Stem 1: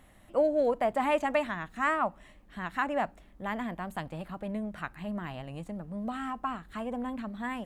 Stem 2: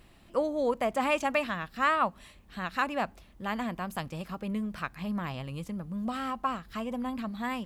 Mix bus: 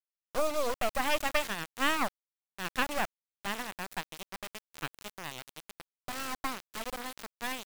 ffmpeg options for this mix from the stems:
-filter_complex "[0:a]highpass=470,highshelf=f=2.4k:g=11.5,volume=0.5dB[a];[1:a]acompressor=threshold=-30dB:ratio=6,adelay=0.8,volume=-16.5dB[b];[a][b]amix=inputs=2:normalize=0,acrusher=bits=3:dc=4:mix=0:aa=0.000001"

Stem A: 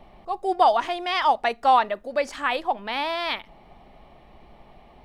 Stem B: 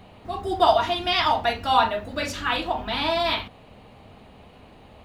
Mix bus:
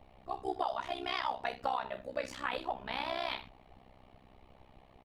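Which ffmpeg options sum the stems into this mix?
-filter_complex "[0:a]volume=-2dB[a];[1:a]flanger=delay=18.5:depth=6.2:speed=1.1,adelay=3.5,volume=-7dB[b];[a][b]amix=inputs=2:normalize=0,flanger=delay=1.1:depth=7.8:regen=-65:speed=1.1:shape=triangular,tremolo=f=64:d=0.947,acompressor=threshold=-30dB:ratio=6"

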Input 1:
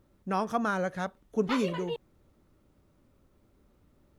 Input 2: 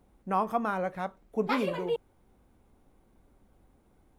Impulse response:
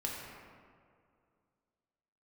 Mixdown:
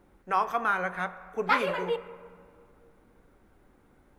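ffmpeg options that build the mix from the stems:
-filter_complex "[0:a]equalizer=f=380:w=0.61:g=9,volume=-7dB,asplit=2[a][b];[b]volume=-15.5dB[c];[1:a]equalizer=f=1.6k:t=o:w=1.3:g=10,bandreject=f=60:t=h:w=6,bandreject=f=120:t=h:w=6,bandreject=f=180:t=h:w=6,volume=-1,volume=-1.5dB,asplit=2[d][e];[e]volume=-12.5dB[f];[2:a]atrim=start_sample=2205[g];[c][f]amix=inputs=2:normalize=0[h];[h][g]afir=irnorm=-1:irlink=0[i];[a][d][i]amix=inputs=3:normalize=0"

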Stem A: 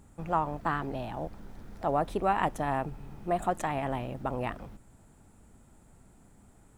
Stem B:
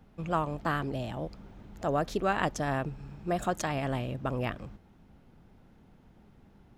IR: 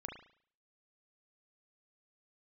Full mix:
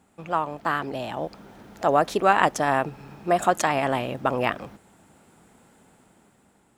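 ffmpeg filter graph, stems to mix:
-filter_complex "[0:a]volume=-2.5dB[a];[1:a]volume=1dB[b];[a][b]amix=inputs=2:normalize=0,highpass=f=470:p=1,dynaudnorm=f=300:g=7:m=7.5dB"

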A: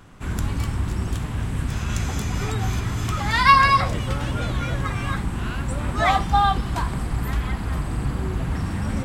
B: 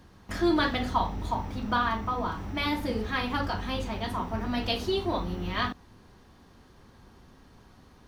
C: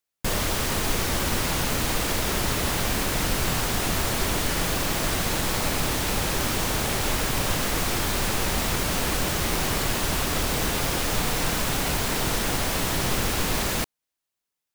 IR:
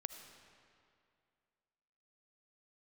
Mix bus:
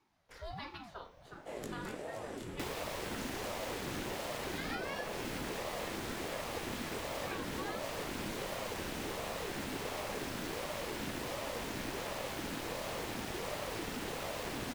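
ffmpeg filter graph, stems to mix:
-filter_complex "[0:a]flanger=delay=17:depth=7.4:speed=0.44,adelay=1250,volume=-7dB[a];[1:a]highpass=f=230:w=0.5412,highpass=f=230:w=1.3066,volume=-13.5dB[b];[2:a]highshelf=f=4.1k:g=-9.5,adelay=2350,volume=-2.5dB[c];[a][b][c]amix=inputs=3:normalize=0,equalizer=f=930:t=o:w=0.43:g=-8.5,acrossover=split=250|540[d][e][f];[d]acompressor=threshold=-40dB:ratio=4[g];[e]acompressor=threshold=-46dB:ratio=4[h];[f]acompressor=threshold=-39dB:ratio=4[i];[g][h][i]amix=inputs=3:normalize=0,aeval=exprs='val(0)*sin(2*PI*420*n/s+420*0.45/1.4*sin(2*PI*1.4*n/s))':c=same"

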